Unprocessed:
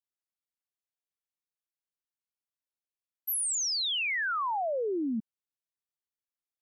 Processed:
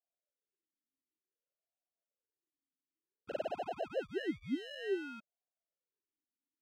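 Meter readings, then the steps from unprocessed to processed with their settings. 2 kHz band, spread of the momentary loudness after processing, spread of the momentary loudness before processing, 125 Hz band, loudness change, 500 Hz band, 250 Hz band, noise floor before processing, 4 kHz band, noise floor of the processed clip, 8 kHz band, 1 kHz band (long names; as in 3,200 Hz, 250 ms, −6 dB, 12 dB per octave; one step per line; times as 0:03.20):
−14.5 dB, 9 LU, 7 LU, can't be measured, −10.5 dB, −3.5 dB, −5.0 dB, below −85 dBFS, −19.0 dB, below −85 dBFS, below −35 dB, −12.5 dB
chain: decimation without filtering 38×
formant filter swept between two vowels a-i 0.55 Hz
level +2.5 dB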